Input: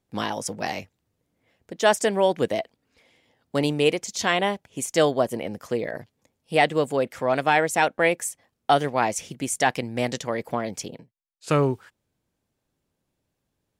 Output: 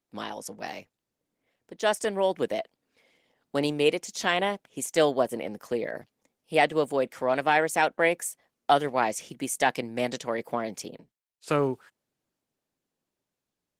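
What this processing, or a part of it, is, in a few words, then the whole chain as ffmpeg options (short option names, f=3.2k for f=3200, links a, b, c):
video call: -af "highpass=180,dynaudnorm=f=500:g=9:m=16dB,volume=-7dB" -ar 48000 -c:a libopus -b:a 20k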